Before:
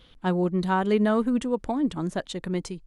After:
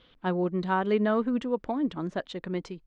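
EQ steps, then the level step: distance through air 180 m; bass shelf 160 Hz -11 dB; peaking EQ 830 Hz -3 dB 0.25 oct; 0.0 dB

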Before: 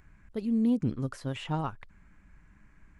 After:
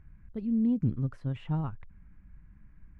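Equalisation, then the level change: tone controls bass +13 dB, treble -14 dB; -8.0 dB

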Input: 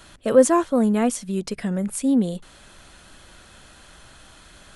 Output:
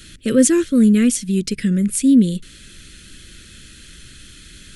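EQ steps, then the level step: Butterworth band-stop 820 Hz, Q 0.52; +8.0 dB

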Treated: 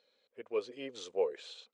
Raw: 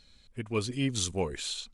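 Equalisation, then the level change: resonant high-pass 490 Hz, resonance Q 5; distance through air 110 m; treble shelf 9.7 kHz -9.5 dB; -9.0 dB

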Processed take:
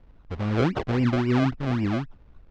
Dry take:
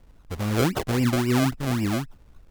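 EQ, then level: distance through air 180 m; treble shelf 8 kHz -6.5 dB; 0.0 dB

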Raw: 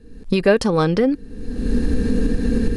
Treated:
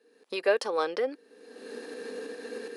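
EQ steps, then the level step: high-pass 430 Hz 24 dB/octave; peaking EQ 7.4 kHz -3.5 dB 0.76 oct; -7.5 dB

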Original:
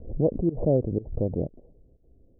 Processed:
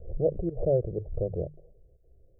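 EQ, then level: hum notches 50/100/150 Hz; dynamic bell 970 Hz, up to -4 dB, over -44 dBFS, Q 3.5; static phaser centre 950 Hz, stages 6; 0.0 dB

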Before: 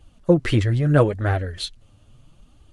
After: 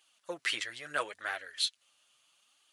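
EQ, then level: Bessel high-pass 2.1 kHz, order 2; 0.0 dB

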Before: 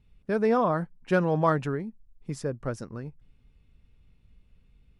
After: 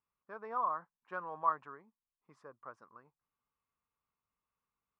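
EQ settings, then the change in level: band-pass filter 1.1 kHz, Q 5.6; -1.5 dB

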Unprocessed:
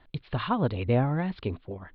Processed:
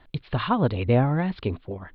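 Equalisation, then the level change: flat; +4.0 dB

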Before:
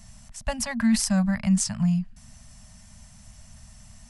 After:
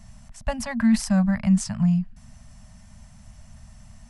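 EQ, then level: treble shelf 2.8 kHz -9.5 dB; +2.5 dB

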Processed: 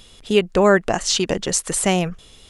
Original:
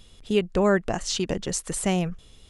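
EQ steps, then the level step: bass shelf 250 Hz -8 dB; +8.5 dB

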